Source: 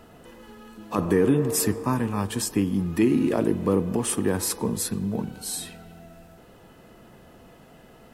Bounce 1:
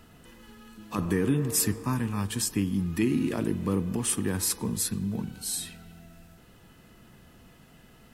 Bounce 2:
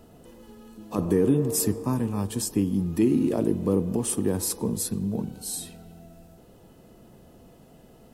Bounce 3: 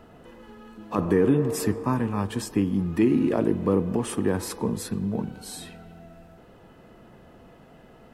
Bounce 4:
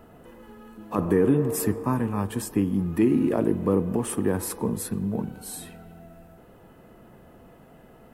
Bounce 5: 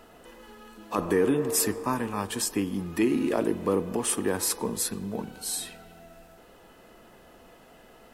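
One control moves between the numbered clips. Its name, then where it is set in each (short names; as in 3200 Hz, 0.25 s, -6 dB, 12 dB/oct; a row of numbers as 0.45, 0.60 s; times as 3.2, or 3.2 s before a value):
bell, frequency: 580, 1700, 15000, 5000, 120 Hz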